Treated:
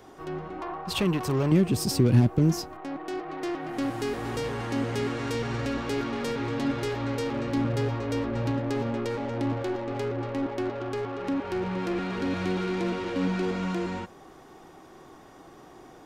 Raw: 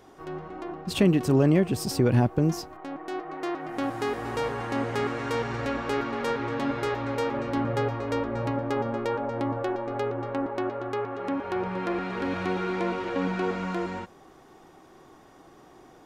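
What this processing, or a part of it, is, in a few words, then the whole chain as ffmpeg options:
one-band saturation: -filter_complex "[0:a]acrossover=split=370|2700[s0][s1][s2];[s1]asoftclip=type=tanh:threshold=0.0126[s3];[s0][s3][s2]amix=inputs=3:normalize=0,asettb=1/sr,asplit=3[s4][s5][s6];[s4]atrim=end=0.614[s7];[s5]atrim=start=0.61:end=1.52,asetpts=PTS-STARTPTS,afade=t=in:d=0.004:c=qsin,afade=t=out:st=0.906:d=0.004:c=qsin,equalizer=f=125:t=o:w=1:g=-4,equalizer=f=250:t=o:w=1:g=-10,equalizer=f=1000:t=o:w=1:g=9,equalizer=f=8000:t=o:w=1:g=-4[s8];[s6]atrim=start=1.516[s9];[s7][s8]acrossfade=d=0.004:c1=hsin:c2=qsin[s10];[s10][s9]acrossfade=d=0.004:c1=qsin:c2=hsin,volume=1.41"

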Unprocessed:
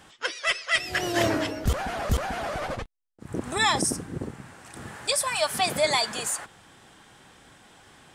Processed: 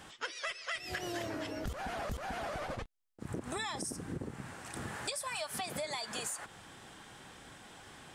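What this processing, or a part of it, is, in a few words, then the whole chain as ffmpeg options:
serial compression, leveller first: -af "acompressor=threshold=0.0447:ratio=2.5,acompressor=threshold=0.0158:ratio=6"

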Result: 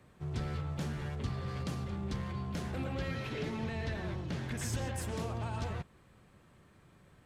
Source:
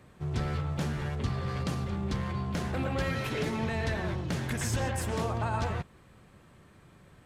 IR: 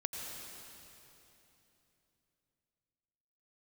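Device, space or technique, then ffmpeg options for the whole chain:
one-band saturation: -filter_complex "[0:a]acrossover=split=500|2300[s0][s1][s2];[s1]asoftclip=type=tanh:threshold=0.0126[s3];[s0][s3][s2]amix=inputs=3:normalize=0,asettb=1/sr,asplit=3[s4][s5][s6];[s4]atrim=end=2.934[s7];[s5]atrim=start=2.93:end=4.57,asetpts=PTS-STARTPTS,afade=t=in:d=0.004:c=qsin,afade=t=out:st=1.636:d=0.004:c=qsin,acrossover=split=5500[s8][s9];[s9]acompressor=threshold=0.001:ratio=4:attack=1:release=60[s10];[s8][s10]amix=inputs=2:normalize=0[s11];[s6]atrim=start=4.566[s12];[s7][s11]acrossfade=d=0.004:c1=hsin:c2=qsin[s13];[s13][s12]acrossfade=d=0.004:c1=qsin:c2=hsin,volume=0.562"

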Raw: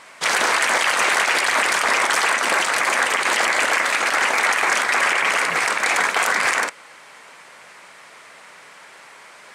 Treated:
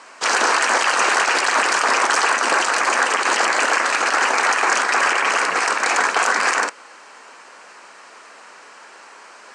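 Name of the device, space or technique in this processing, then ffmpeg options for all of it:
television speaker: -af "highpass=f=230:w=0.5412,highpass=f=230:w=1.3066,equalizer=f=600:t=q:w=4:g=-3,equalizer=f=2100:t=q:w=4:g=-8,equalizer=f=3500:t=q:w=4:g=-8,lowpass=f=8000:w=0.5412,lowpass=f=8000:w=1.3066,volume=1.5"

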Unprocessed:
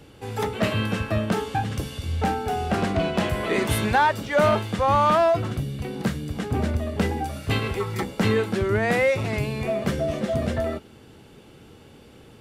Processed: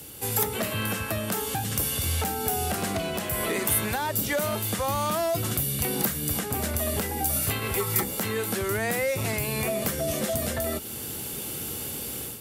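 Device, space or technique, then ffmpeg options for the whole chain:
FM broadcast chain: -filter_complex "[0:a]highpass=f=42:w=0.5412,highpass=f=42:w=1.3066,dynaudnorm=f=360:g=3:m=2.99,acrossover=split=520|2400[s0][s1][s2];[s0]acompressor=threshold=0.0501:ratio=4[s3];[s1]acompressor=threshold=0.0355:ratio=4[s4];[s2]acompressor=threshold=0.00708:ratio=4[s5];[s3][s4][s5]amix=inputs=3:normalize=0,aemphasis=mode=production:type=50fm,alimiter=limit=0.126:level=0:latency=1:release=466,asoftclip=type=hard:threshold=0.0944,lowpass=f=15000:w=0.5412,lowpass=f=15000:w=1.3066,aemphasis=mode=production:type=50fm"

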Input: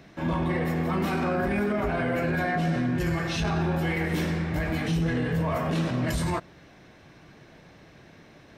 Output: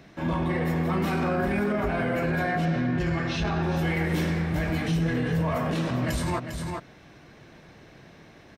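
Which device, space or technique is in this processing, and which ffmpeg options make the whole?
ducked delay: -filter_complex "[0:a]asplit=3[s0][s1][s2];[s1]adelay=401,volume=0.562[s3];[s2]apad=whole_len=395644[s4];[s3][s4]sidechaincompress=threshold=0.0355:ratio=8:attack=5.2:release=373[s5];[s0][s5]amix=inputs=2:normalize=0,asettb=1/sr,asplit=3[s6][s7][s8];[s6]atrim=end=2.654[s9];[s7]atrim=start=2.65:end=3.63,asetpts=PTS-STARTPTS,afade=t=in:d=0.004:c=qsin,afade=t=out:st=0.976:d=0.004:c=qsin,lowpass=5200[s10];[s8]atrim=start=3.626[s11];[s9][s10]acrossfade=d=0.004:c1=hsin:c2=qsin[s12];[s12][s11]acrossfade=d=0.004:c1=qsin:c2=hsin"

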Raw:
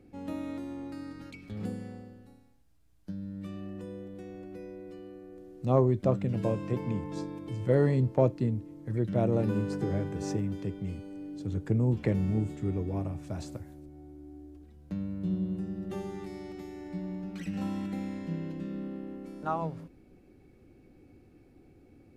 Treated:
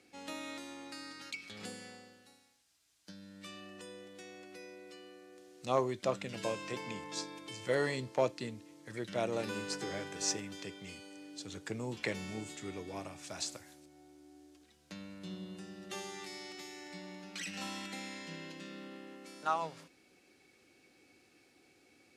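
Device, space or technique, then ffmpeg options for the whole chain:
piezo pickup straight into a mixer: -af "lowpass=6200,aderivative,volume=7.08"

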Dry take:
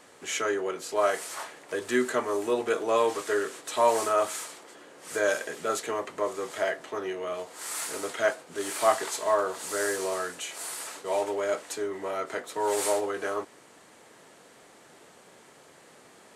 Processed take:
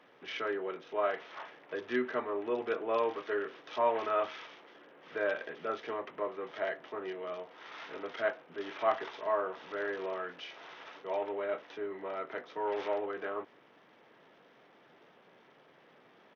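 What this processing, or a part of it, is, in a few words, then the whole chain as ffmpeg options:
Bluetooth headset: -filter_complex "[0:a]asplit=3[s0][s1][s2];[s0]afade=t=out:st=3.95:d=0.02[s3];[s1]adynamicequalizer=threshold=0.00562:dfrequency=2600:dqfactor=1.1:tfrequency=2600:tqfactor=1.1:attack=5:release=100:ratio=0.375:range=2:mode=boostabove:tftype=bell,afade=t=in:st=3.95:d=0.02,afade=t=out:st=4.77:d=0.02[s4];[s2]afade=t=in:st=4.77:d=0.02[s5];[s3][s4][s5]amix=inputs=3:normalize=0,highpass=f=110:w=0.5412,highpass=f=110:w=1.3066,aresample=8000,aresample=44100,volume=0.473" -ar 48000 -c:a sbc -b:a 64k

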